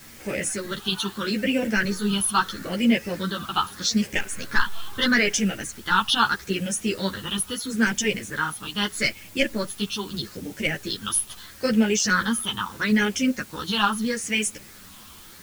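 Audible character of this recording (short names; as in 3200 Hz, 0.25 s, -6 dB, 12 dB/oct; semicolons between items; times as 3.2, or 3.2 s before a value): phasing stages 6, 0.78 Hz, lowest notch 540–1100 Hz; a quantiser's noise floor 8-bit, dither triangular; a shimmering, thickened sound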